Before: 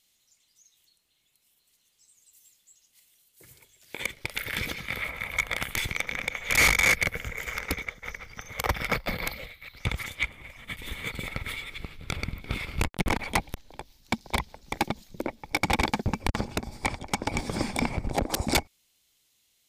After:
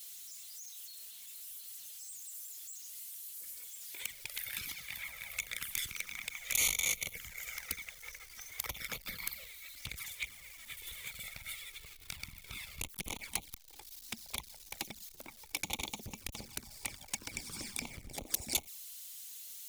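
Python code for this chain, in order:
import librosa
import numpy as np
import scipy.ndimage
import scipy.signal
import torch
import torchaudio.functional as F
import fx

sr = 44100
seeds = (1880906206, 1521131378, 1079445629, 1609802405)

y = x + 0.5 * 10.0 ** (-40.0 / 20.0) * np.sign(x)
y = fx.env_flanger(y, sr, rest_ms=5.5, full_db=-22.5)
y = F.preemphasis(torch.from_numpy(y), 0.9).numpy()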